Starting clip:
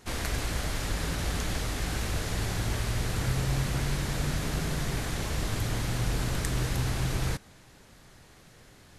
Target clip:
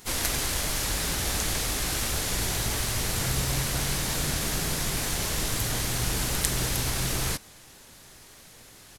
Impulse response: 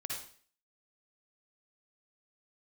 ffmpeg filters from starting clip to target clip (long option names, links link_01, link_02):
-filter_complex "[0:a]crystalizer=i=1.5:c=0,bass=frequency=250:gain=-4,treble=frequency=4000:gain=2,asplit=4[link_01][link_02][link_03][link_04];[link_02]asetrate=22050,aresample=44100,atempo=2,volume=-6dB[link_05];[link_03]asetrate=52444,aresample=44100,atempo=0.840896,volume=-16dB[link_06];[link_04]asetrate=58866,aresample=44100,atempo=0.749154,volume=-14dB[link_07];[link_01][link_05][link_06][link_07]amix=inputs=4:normalize=0,volume=1dB"